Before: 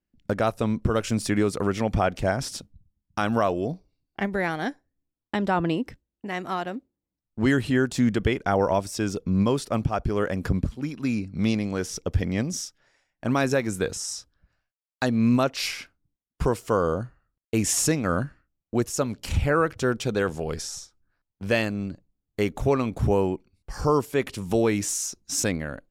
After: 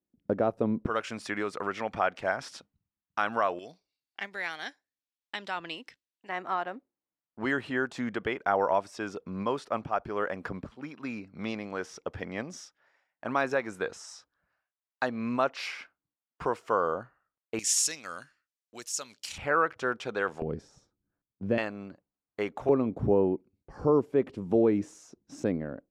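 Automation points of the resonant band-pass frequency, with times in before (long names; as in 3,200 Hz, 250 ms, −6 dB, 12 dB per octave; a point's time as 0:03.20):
resonant band-pass, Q 0.85
380 Hz
from 0:00.86 1,400 Hz
from 0:03.59 3,600 Hz
from 0:06.29 1,100 Hz
from 0:17.59 5,400 Hz
from 0:19.38 1,200 Hz
from 0:20.42 250 Hz
from 0:21.58 1,000 Hz
from 0:22.69 340 Hz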